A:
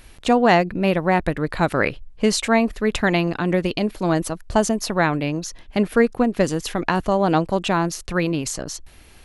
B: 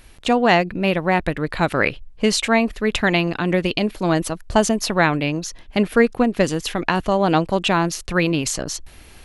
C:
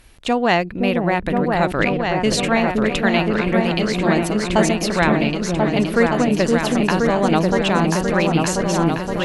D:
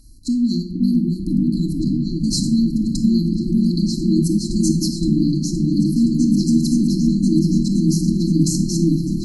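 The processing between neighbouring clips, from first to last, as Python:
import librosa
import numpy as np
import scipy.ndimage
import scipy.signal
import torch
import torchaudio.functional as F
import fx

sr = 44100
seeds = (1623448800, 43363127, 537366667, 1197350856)

y1 = fx.dynamic_eq(x, sr, hz=2900.0, q=1.1, threshold_db=-39.0, ratio=4.0, max_db=5)
y1 = fx.rider(y1, sr, range_db=4, speed_s=2.0)
y2 = fx.cheby_harmonics(y1, sr, harmonics=(3,), levels_db=(-32,), full_scale_db=-1.0)
y2 = fx.echo_opening(y2, sr, ms=519, hz=400, octaves=2, feedback_pct=70, wet_db=0)
y2 = y2 * 10.0 ** (-1.0 / 20.0)
y3 = fx.brickwall_bandstop(y2, sr, low_hz=350.0, high_hz=4000.0)
y3 = fx.room_shoebox(y3, sr, seeds[0], volume_m3=1900.0, walls='furnished', distance_m=2.2)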